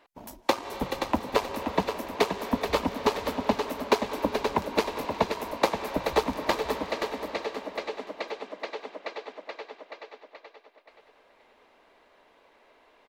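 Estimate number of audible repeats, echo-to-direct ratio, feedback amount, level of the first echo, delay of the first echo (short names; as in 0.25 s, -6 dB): 3, -6.5 dB, 30%, -7.0 dB, 0.526 s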